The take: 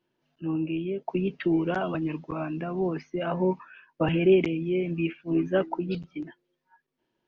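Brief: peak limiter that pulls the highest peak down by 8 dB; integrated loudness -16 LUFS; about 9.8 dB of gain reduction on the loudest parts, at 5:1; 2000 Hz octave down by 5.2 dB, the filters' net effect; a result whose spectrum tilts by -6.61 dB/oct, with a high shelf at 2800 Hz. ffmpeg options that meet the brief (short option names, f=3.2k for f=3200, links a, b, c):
-af "equalizer=f=2k:t=o:g=-5.5,highshelf=f=2.8k:g=-4,acompressor=threshold=-26dB:ratio=5,volume=17.5dB,alimiter=limit=-6.5dB:level=0:latency=1"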